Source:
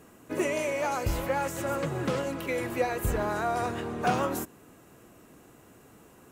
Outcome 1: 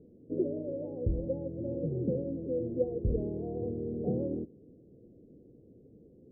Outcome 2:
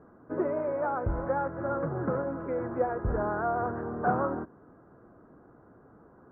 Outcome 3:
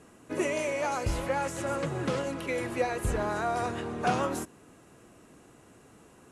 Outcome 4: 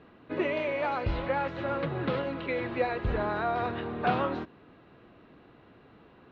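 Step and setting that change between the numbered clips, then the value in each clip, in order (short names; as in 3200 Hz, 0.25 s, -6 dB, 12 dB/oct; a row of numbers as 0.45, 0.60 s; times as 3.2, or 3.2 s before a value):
elliptic low-pass, frequency: 500, 1500, 11000, 4000 Hz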